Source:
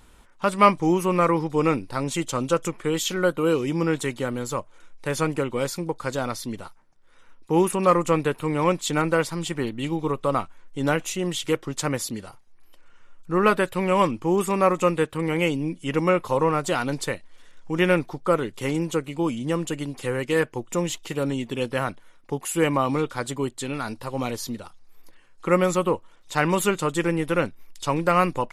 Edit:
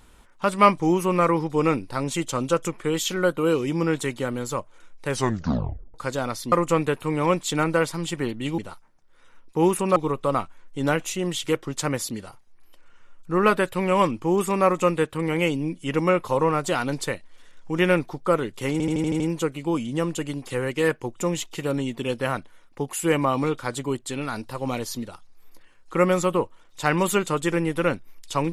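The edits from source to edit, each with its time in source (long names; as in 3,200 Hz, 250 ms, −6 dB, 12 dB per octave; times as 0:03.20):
0:05.08: tape stop 0.86 s
0:06.52–0:07.90: move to 0:09.96
0:18.72: stutter 0.08 s, 7 plays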